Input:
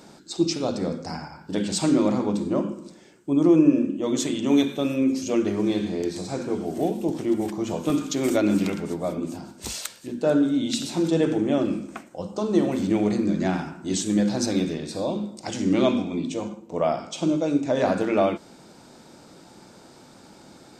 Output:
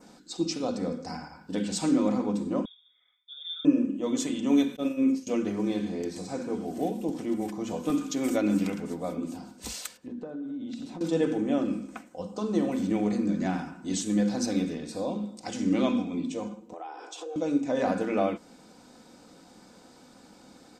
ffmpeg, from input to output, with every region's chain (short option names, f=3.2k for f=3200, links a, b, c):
-filter_complex "[0:a]asettb=1/sr,asplit=3[a][b][c];[a]atrim=end=2.654[d];[b]atrim=start=2.65:end=3.65,asetpts=PTS-STARTPTS,afade=t=in:d=0.004:c=qsin,afade=t=out:st=0.996:d=0.004:c=qsin,asplit=3[e][f][g];[e]bandpass=f=530:t=q:w=8,volume=0dB[h];[f]bandpass=f=1.84k:t=q:w=8,volume=-6dB[i];[g]bandpass=f=2.48k:t=q:w=8,volume=-9dB[j];[h][i][j]amix=inputs=3:normalize=0,lowpass=f=3.3k:t=q:w=0.5098,lowpass=f=3.3k:t=q:w=0.6013,lowpass=f=3.3k:t=q:w=0.9,lowpass=f=3.3k:t=q:w=2.563,afreqshift=-3900[k];[c]atrim=start=3.646[l];[d][k]acrossfade=d=0.004:c1=hsin:c2=qsin[m];[m][l]acrossfade=d=0.004:c1=qsin:c2=hsin,asettb=1/sr,asplit=3[n][o][p];[n]atrim=end=4.764[q];[o]atrim=start=4.76:end=5.27,asetpts=PTS-STARTPTS,afade=t=in:d=0.004:c=qsin,afade=t=out:st=0.506:d=0.004:c=qsin,agate=range=-33dB:threshold=-22dB:ratio=3:release=100:detection=peak,asplit=2[r][s];[s]adelay=48,volume=-9dB[t];[r][t]amix=inputs=2:normalize=0,atrim=end_sample=22491[u];[p]atrim=start=5.266[v];[q][u]acrossfade=d=0.004:c1=hsin:c2=qsin[w];[w][v]acrossfade=d=0.004:c1=qsin:c2=hsin,asettb=1/sr,asplit=3[x][y][z];[x]atrim=end=9.974[aa];[y]atrim=start=9.97:end=11.01,asetpts=PTS-STARTPTS,afade=t=in:d=0.004:c=qsin,afade=t=out:st=1.036:d=0.004:c=qsin,lowpass=f=1k:p=1,acompressor=threshold=-29dB:ratio=16:attack=3.2:release=140:knee=1:detection=peak[ab];[z]atrim=start=11.006[ac];[aa][ab]acrossfade=d=0.004:c1=hsin:c2=qsin[ad];[ad][ac]acrossfade=d=0.004:c1=qsin:c2=hsin,asettb=1/sr,asplit=3[ae][af][ag];[ae]atrim=end=16.734[ah];[af]atrim=start=16.73:end=17.36,asetpts=PTS-STARTPTS,afade=t=in:d=0.004:c=qsin,afade=t=out:st=0.626:d=0.004:c=qsin,highpass=100,acompressor=threshold=-32dB:ratio=6:attack=3.2:release=140:knee=1:detection=peak,afreqshift=160[ai];[ag]atrim=start=17.356[aj];[ah][ai]acrossfade=d=0.004:c1=hsin:c2=qsin[ak];[ak][aj]acrossfade=d=0.004:c1=qsin:c2=hsin,aecho=1:1:4:0.48,adynamicequalizer=threshold=0.00355:dfrequency=3800:dqfactor=1.9:tfrequency=3800:tqfactor=1.9:attack=5:release=100:ratio=0.375:range=2:mode=cutabove:tftype=bell,volume=-5.5dB"